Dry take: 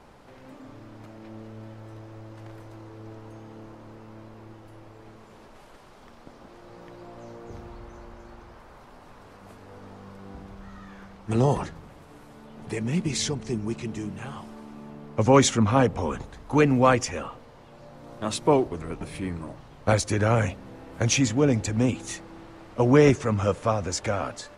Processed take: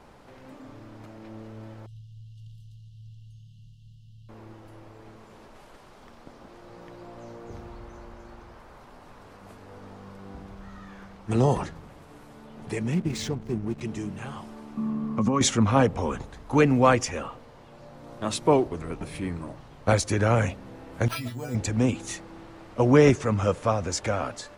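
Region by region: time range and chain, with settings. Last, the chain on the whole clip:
1.86–4.29 brick-wall FIR band-stop 190–2700 Hz + high shelf 4200 Hz -9.5 dB
12.94–13.81 high shelf 2800 Hz -7.5 dB + backlash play -36 dBFS
14.77–15.41 compressor 4:1, threshold -29 dBFS + small resonant body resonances 210/1100 Hz, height 17 dB, ringing for 50 ms
21.08–21.55 metallic resonator 120 Hz, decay 0.3 s, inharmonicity 0.002 + careless resampling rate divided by 6×, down none, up hold
whole clip: dry

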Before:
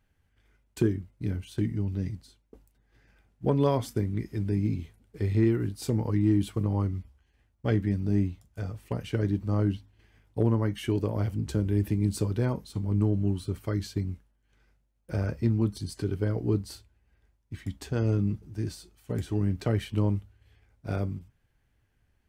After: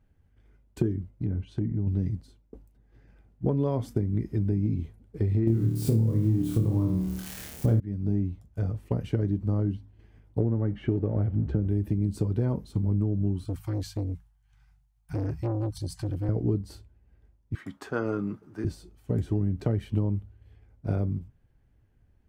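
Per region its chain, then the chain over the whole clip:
1.11–1.87 treble ducked by the level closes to 1800 Hz, closed at -26.5 dBFS + compressor 2:1, threshold -33 dBFS
5.47–7.8 switching spikes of -24 dBFS + low shelf 460 Hz +10 dB + flutter echo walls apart 4.6 m, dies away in 0.62 s
10.4–11.68 G.711 law mismatch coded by mu + LPF 2100 Hz + notch 980 Hz, Q 6
13.45–16.29 Chebyshev band-stop 170–720 Hz, order 5 + high shelf 2600 Hz +7.5 dB + core saturation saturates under 560 Hz
17.55–18.65 Bessel high-pass 380 Hz + bell 1300 Hz +14 dB 1 oct
whole clip: tilt shelf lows +7 dB, about 940 Hz; compressor, threshold -22 dBFS

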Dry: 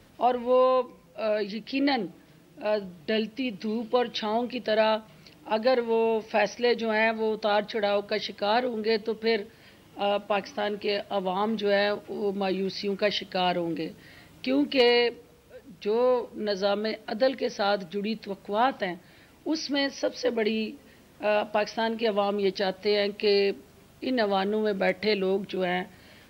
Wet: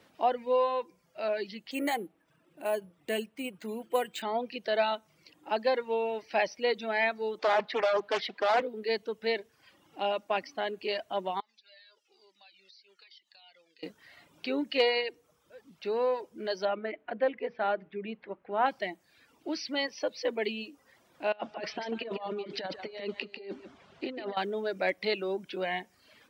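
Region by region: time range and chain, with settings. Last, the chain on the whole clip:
1.71–4.22 LPF 3500 Hz + careless resampling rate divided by 4×, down none, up hold
7.39–8.62 overdrive pedal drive 15 dB, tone 1800 Hz, clips at -12.5 dBFS + Doppler distortion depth 0.48 ms
11.4–13.83 band-pass 4700 Hz, Q 1.5 + compressor 5:1, threshold -46 dBFS + cascading flanger falling 1.1 Hz
16.65–18.66 LPF 2500 Hz 24 dB/oct + notches 60/120/180/240/300/360/420/480 Hz
21.32–24.37 LPF 4300 Hz + negative-ratio compressor -30 dBFS, ratio -0.5 + echo 0.146 s -6 dB
whole clip: HPF 450 Hz 6 dB/oct; reverb removal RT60 0.73 s; high shelf 5500 Hz -7 dB; gain -1.5 dB

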